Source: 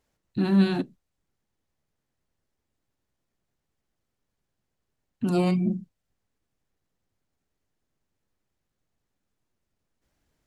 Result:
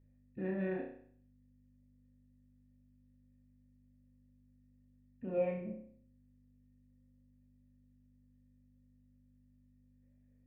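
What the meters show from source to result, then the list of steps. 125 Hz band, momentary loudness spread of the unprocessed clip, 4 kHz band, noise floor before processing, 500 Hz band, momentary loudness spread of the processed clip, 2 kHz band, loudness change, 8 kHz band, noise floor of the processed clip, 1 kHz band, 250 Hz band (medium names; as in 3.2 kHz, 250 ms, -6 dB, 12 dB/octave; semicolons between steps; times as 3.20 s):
-18.0 dB, 14 LU, under -30 dB, -82 dBFS, -6.0 dB, 15 LU, -11.0 dB, -14.0 dB, no reading, -67 dBFS, -15.0 dB, -17.5 dB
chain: cascade formant filter e; hum 50 Hz, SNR 18 dB; flutter echo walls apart 5.5 m, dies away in 0.57 s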